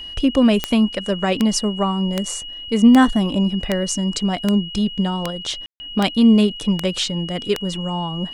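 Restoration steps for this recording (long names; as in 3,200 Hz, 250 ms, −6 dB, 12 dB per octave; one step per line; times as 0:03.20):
click removal
notch filter 2,900 Hz, Q 30
ambience match 0:05.66–0:05.80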